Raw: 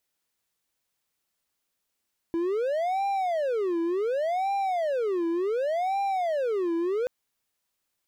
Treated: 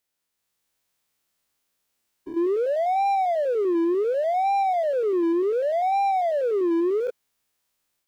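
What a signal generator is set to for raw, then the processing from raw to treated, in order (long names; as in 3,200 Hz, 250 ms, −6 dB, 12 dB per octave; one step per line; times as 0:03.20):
siren wail 333–795 Hz 0.68 per second triangle −22 dBFS 4.73 s
spectrum averaged block by block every 100 ms
automatic gain control gain up to 5.5 dB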